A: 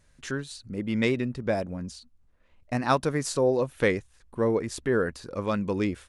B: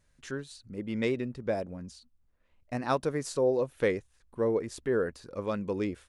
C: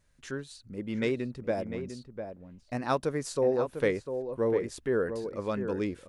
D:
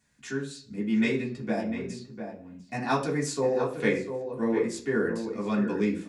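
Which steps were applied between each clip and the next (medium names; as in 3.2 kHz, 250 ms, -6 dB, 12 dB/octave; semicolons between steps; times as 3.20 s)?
dynamic bell 460 Hz, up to +5 dB, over -37 dBFS, Q 1.2; trim -7 dB
echo from a far wall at 120 m, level -8 dB
reverberation RT60 0.45 s, pre-delay 3 ms, DRR -4 dB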